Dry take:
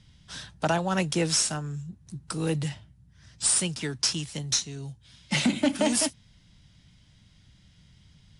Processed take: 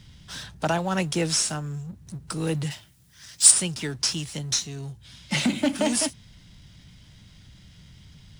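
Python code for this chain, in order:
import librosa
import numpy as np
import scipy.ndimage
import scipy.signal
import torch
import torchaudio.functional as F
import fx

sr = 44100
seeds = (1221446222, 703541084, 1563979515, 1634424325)

y = fx.law_mismatch(x, sr, coded='mu')
y = fx.tilt_eq(y, sr, slope=3.5, at=(2.7, 3.5), fade=0.02)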